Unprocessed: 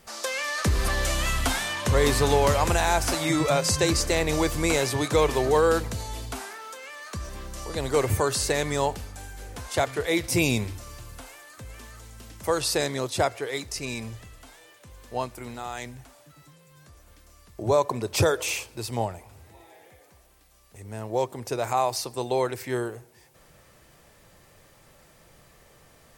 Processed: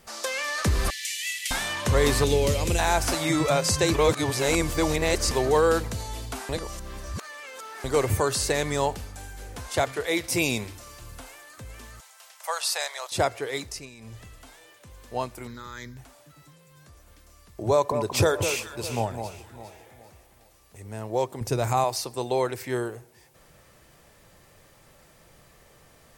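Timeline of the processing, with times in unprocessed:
0.90–1.51 s: Chebyshev high-pass 1.9 kHz, order 6
2.24–2.79 s: high-order bell 1.1 kHz -12 dB
3.94–5.31 s: reverse
6.49–7.84 s: reverse
9.92–11.02 s: bass shelf 200 Hz -9 dB
12.00–13.12 s: steep high-pass 640 Hz
13.65–14.23 s: dip -15 dB, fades 0.25 s
15.47–15.97 s: static phaser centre 2.7 kHz, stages 6
17.71–20.88 s: echo whose repeats swap between lows and highs 203 ms, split 1.3 kHz, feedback 58%, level -7 dB
21.41–21.84 s: tone controls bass +11 dB, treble +3 dB

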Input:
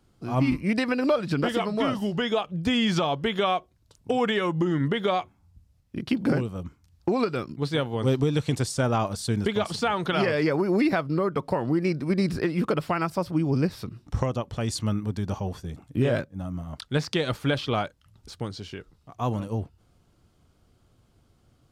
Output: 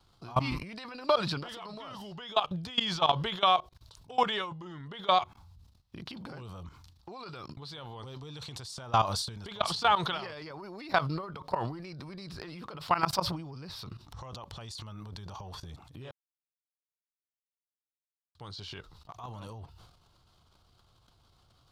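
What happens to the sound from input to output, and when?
16.11–18.35 s: mute
whole clip: graphic EQ 250/500/1000/2000/4000/8000 Hz -9/-3/+8/-4/+11/-3 dB; level held to a coarse grid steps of 22 dB; transient shaper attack 0 dB, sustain +12 dB

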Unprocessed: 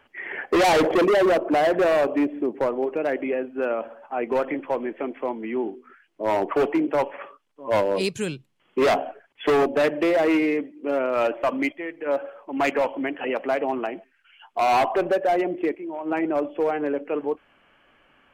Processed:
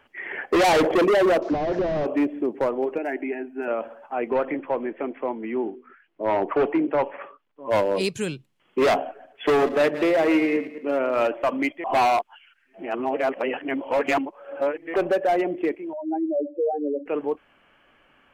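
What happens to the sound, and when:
1.42–2.06 s: one-bit delta coder 32 kbps, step -42 dBFS
2.98–3.68 s: static phaser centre 780 Hz, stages 8
4.30–7.66 s: low-pass 2.9 kHz
9.04–11.26 s: backward echo that repeats 109 ms, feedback 44%, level -12.5 dB
11.84–14.94 s: reverse
15.93–17.06 s: spectral contrast enhancement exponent 3.8

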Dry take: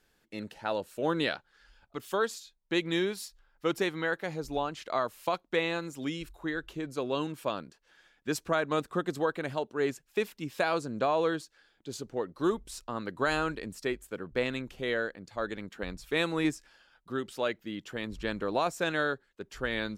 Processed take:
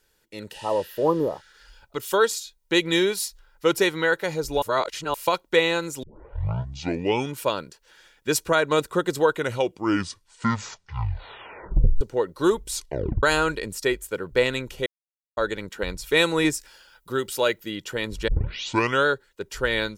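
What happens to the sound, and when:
0.56–1.50 s: spectral replace 1.3–11 kHz
4.62–5.14 s: reverse
6.03 s: tape start 1.39 s
9.21 s: tape stop 2.80 s
12.73 s: tape stop 0.50 s
14.86–15.37 s: mute
16.54–17.70 s: treble shelf 11 kHz +10.5 dB
18.28 s: tape start 0.78 s
whole clip: treble shelf 4.7 kHz +8 dB; comb 2.1 ms, depth 43%; level rider gain up to 7 dB

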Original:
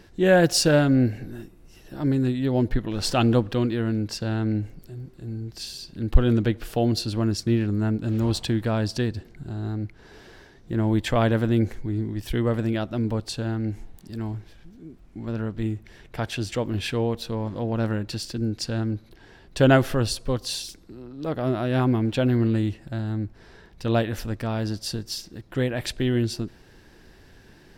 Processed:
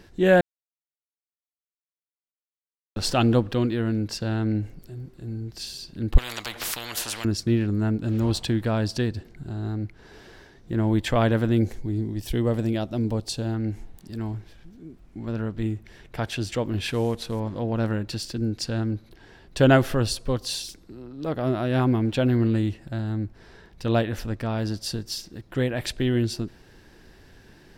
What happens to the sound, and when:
0.41–2.96 s: mute
6.18–7.25 s: spectrum-flattening compressor 10:1
11.58–13.54 s: FFT filter 780 Hz 0 dB, 1.4 kHz -6 dB, 5.6 kHz +3 dB
16.88–17.40 s: CVSD coder 64 kbps
24.01–24.58 s: treble shelf 6.2 kHz -4.5 dB

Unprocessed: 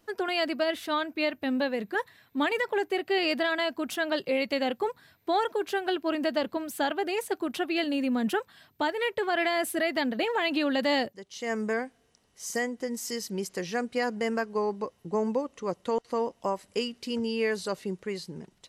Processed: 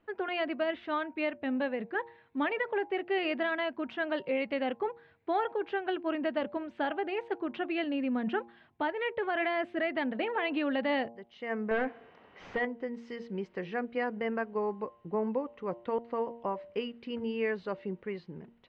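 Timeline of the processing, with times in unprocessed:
11.71–12.65 s: overdrive pedal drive 29 dB, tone 1.3 kHz, clips at -17.5 dBFS
whole clip: low-pass 2.8 kHz 24 dB/octave; de-hum 116.8 Hz, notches 9; trim -3.5 dB

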